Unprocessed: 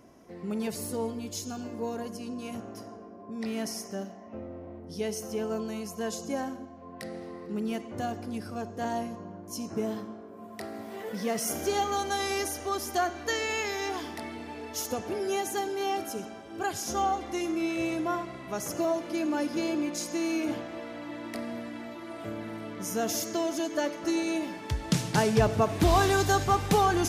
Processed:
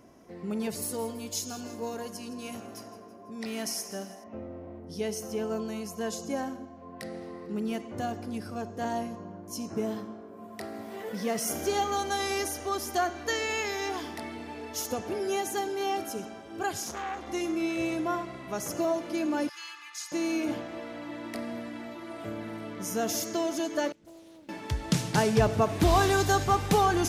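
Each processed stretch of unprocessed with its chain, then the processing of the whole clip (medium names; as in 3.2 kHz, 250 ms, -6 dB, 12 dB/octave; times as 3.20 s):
0.82–4.24 s: tilt EQ +1.5 dB/octave + feedback delay 165 ms, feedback 51%, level -15 dB
16.84–17.27 s: compression 5:1, threshold -28 dBFS + transformer saturation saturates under 1.4 kHz
19.49–20.12 s: inverse Chebyshev high-pass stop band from 590 Hz + tilt EQ -2 dB/octave + comb 2.4 ms, depth 74%
23.92–24.49 s: amplifier tone stack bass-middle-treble 10-0-1 + loudspeaker Doppler distortion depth 0.69 ms
whole clip: none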